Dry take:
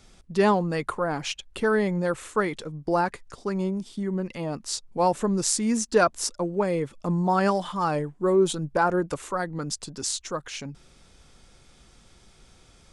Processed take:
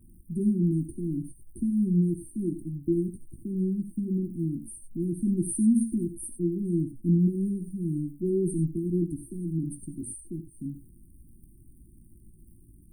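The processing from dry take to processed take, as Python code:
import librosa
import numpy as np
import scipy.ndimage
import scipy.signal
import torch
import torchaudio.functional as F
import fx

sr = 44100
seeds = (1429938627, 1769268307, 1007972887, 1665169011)

p1 = fx.high_shelf(x, sr, hz=5600.0, db=-6.5)
p2 = np.clip(p1, -10.0 ** (-20.5 / 20.0), 10.0 ** (-20.5 / 20.0))
p3 = p1 + (p2 * 10.0 ** (-10.5 / 20.0))
p4 = fx.dmg_crackle(p3, sr, seeds[0], per_s=140.0, level_db=-44.0)
p5 = fx.brickwall_bandstop(p4, sr, low_hz=370.0, high_hz=8500.0)
p6 = fx.doubler(p5, sr, ms=18.0, db=-9.0)
y = fx.rev_gated(p6, sr, seeds[1], gate_ms=110, shape='rising', drr_db=9.0)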